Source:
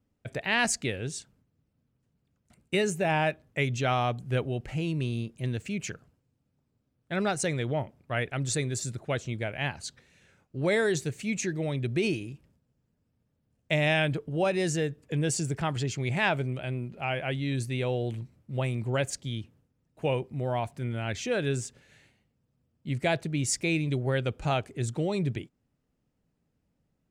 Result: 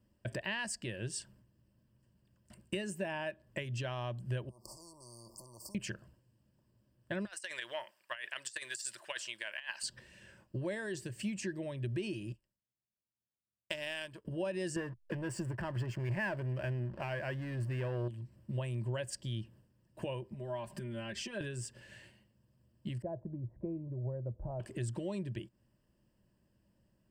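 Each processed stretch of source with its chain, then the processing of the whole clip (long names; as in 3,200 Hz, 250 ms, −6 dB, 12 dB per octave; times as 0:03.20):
0:04.49–0:05.75: downward compressor 10 to 1, threshold −41 dBFS + linear-phase brick-wall band-stop 1,200–4,400 Hz + every bin compressed towards the loudest bin 4 to 1
0:07.25–0:09.83: high-pass filter 1,500 Hz + compressor whose output falls as the input rises −40 dBFS, ratio −0.5
0:12.32–0:14.25: spectral tilt +2 dB per octave + power curve on the samples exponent 1.4
0:14.76–0:18.08: leveller curve on the samples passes 3 + high shelf with overshoot 2,700 Hz −9 dB, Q 1.5 + slack as between gear wheels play −36.5 dBFS
0:20.32–0:21.41: downward compressor 10 to 1, threshold −41 dBFS + comb filter 5 ms, depth 75%
0:23.02–0:24.60: inverse Chebyshev low-pass filter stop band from 4,100 Hz, stop band 80 dB + parametric band 310 Hz −9 dB 2.1 octaves
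whole clip: downward compressor 10 to 1, threshold −39 dBFS; EQ curve with evenly spaced ripples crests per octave 1.3, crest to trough 10 dB; level +2 dB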